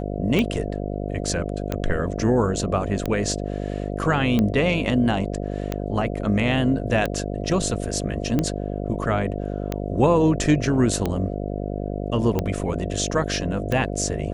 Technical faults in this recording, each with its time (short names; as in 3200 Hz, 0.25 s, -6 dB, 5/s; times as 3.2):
buzz 50 Hz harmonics 14 -28 dBFS
tick 45 rpm -10 dBFS